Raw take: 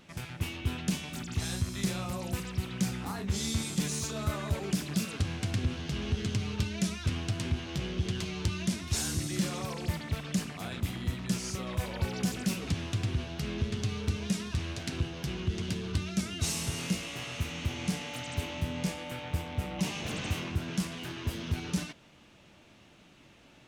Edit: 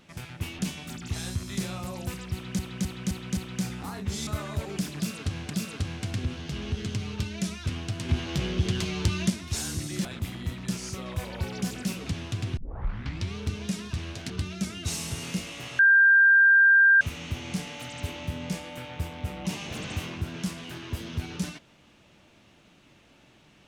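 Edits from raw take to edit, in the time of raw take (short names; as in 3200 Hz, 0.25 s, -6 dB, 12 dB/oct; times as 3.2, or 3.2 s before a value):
0.59–0.85 cut
2.59–2.85 loop, 5 plays
3.49–4.21 cut
4.9–5.44 loop, 2 plays
7.49–8.7 gain +5.5 dB
9.45–10.66 cut
13.18 tape start 0.78 s
14.91–15.86 cut
17.35 add tone 1590 Hz -14 dBFS 1.22 s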